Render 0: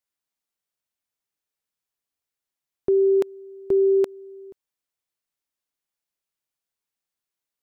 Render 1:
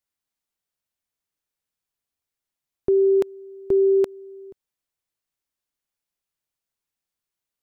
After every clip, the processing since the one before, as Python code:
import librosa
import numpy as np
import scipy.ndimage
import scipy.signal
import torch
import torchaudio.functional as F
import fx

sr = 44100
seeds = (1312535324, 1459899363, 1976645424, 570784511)

y = fx.low_shelf(x, sr, hz=140.0, db=6.5)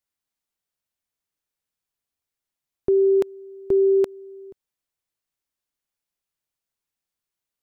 y = x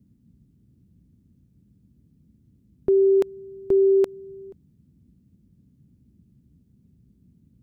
y = fx.dmg_noise_band(x, sr, seeds[0], low_hz=50.0, high_hz=240.0, level_db=-58.0)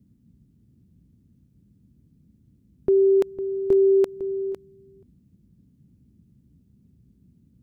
y = x + 10.0 ** (-12.5 / 20.0) * np.pad(x, (int(504 * sr / 1000.0), 0))[:len(x)]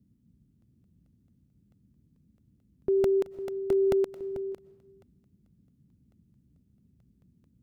y = fx.rev_freeverb(x, sr, rt60_s=0.9, hf_ratio=0.95, predelay_ms=80, drr_db=16.5)
y = fx.buffer_crackle(y, sr, first_s=0.62, period_s=0.22, block=64, kind='repeat')
y = F.gain(torch.from_numpy(y), -6.5).numpy()